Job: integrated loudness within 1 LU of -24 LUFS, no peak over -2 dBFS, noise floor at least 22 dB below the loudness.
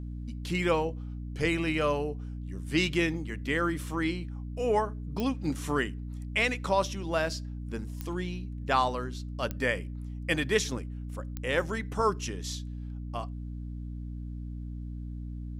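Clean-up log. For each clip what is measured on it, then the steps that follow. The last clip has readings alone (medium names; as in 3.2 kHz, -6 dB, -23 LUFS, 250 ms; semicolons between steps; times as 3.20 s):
clicks found 4; hum 60 Hz; highest harmonic 300 Hz; hum level -35 dBFS; loudness -31.5 LUFS; peak level -12.0 dBFS; loudness target -24.0 LUFS
-> de-click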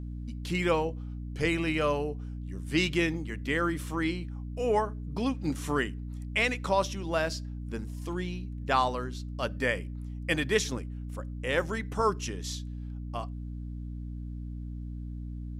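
clicks found 0; hum 60 Hz; highest harmonic 300 Hz; hum level -35 dBFS
-> hum notches 60/120/180/240/300 Hz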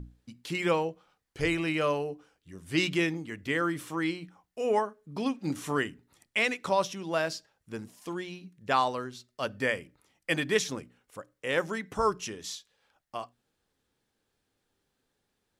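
hum not found; loudness -31.0 LUFS; peak level -12.0 dBFS; loudness target -24.0 LUFS
-> trim +7 dB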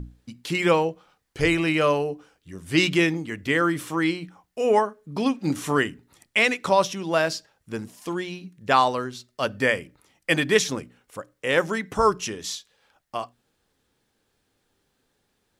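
loudness -24.0 LUFS; peak level -5.0 dBFS; noise floor -73 dBFS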